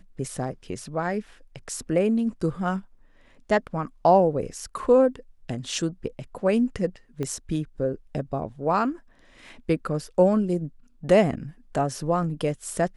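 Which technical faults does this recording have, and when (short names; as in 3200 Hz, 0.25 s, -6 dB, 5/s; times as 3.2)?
7.23 pop -18 dBFS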